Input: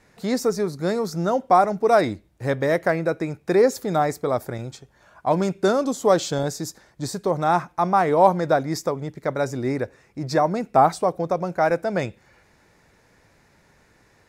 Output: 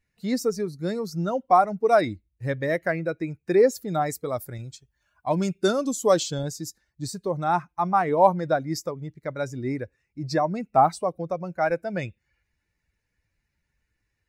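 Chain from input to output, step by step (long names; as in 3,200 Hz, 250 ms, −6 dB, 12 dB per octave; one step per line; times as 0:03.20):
spectral dynamics exaggerated over time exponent 1.5
0:04.06–0:06.23: high-shelf EQ 3,600 Hz +8 dB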